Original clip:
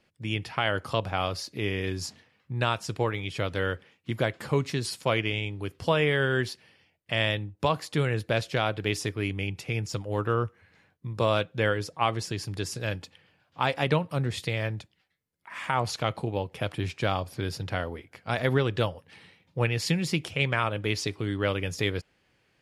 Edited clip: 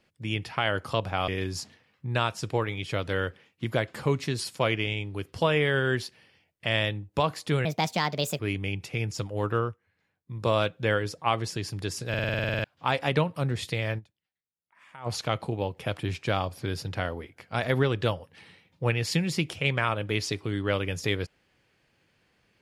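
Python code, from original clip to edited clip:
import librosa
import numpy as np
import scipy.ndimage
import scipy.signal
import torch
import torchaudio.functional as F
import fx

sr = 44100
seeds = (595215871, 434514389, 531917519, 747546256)

y = fx.edit(x, sr, fx.cut(start_s=1.28, length_s=0.46),
    fx.speed_span(start_s=8.11, length_s=1.03, speed=1.39),
    fx.fade_down_up(start_s=10.33, length_s=0.81, db=-13.5, fade_s=0.2),
    fx.stutter_over(start_s=12.84, slice_s=0.05, count=11),
    fx.fade_down_up(start_s=14.73, length_s=1.09, db=-18.5, fade_s=0.14, curve='exp'), tone=tone)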